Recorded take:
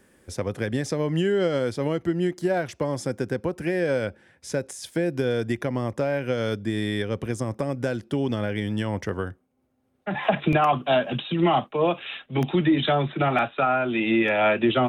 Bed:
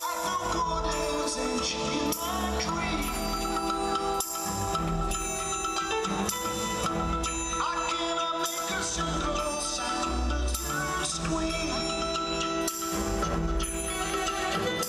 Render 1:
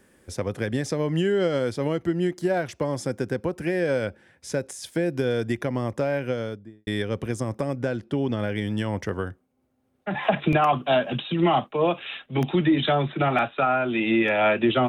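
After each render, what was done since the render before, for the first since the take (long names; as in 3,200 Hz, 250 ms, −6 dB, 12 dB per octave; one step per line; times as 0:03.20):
0:06.15–0:06.87: fade out and dull
0:07.76–0:08.39: low-pass filter 3,400 Hz 6 dB per octave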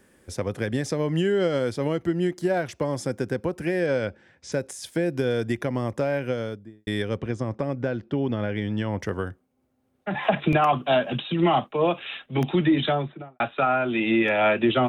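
0:03.86–0:04.52: low-pass filter 7,100 Hz 24 dB per octave
0:07.17–0:09.00: high-frequency loss of the air 130 metres
0:12.76–0:13.40: fade out and dull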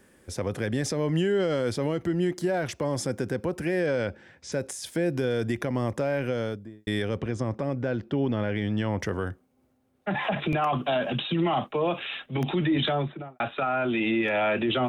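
brickwall limiter −17.5 dBFS, peak gain reduction 8 dB
transient designer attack 0 dB, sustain +4 dB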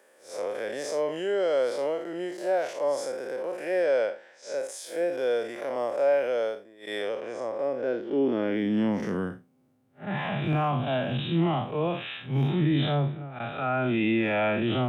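spectrum smeared in time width 118 ms
high-pass filter sweep 570 Hz → 120 Hz, 0:07.42–0:09.91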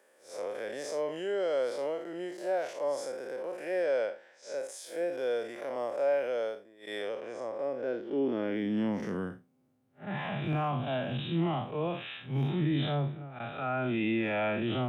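level −5 dB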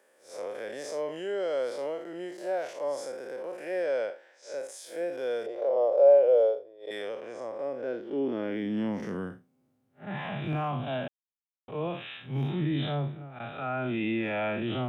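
0:04.10–0:04.52: high-pass filter 260 Hz 24 dB per octave
0:05.46–0:06.91: drawn EQ curve 100 Hz 0 dB, 140 Hz −12 dB, 230 Hz −13 dB, 490 Hz +13 dB, 1,800 Hz −12 dB, 4,100 Hz −3 dB, 8,700 Hz −19 dB
0:11.08–0:11.68: silence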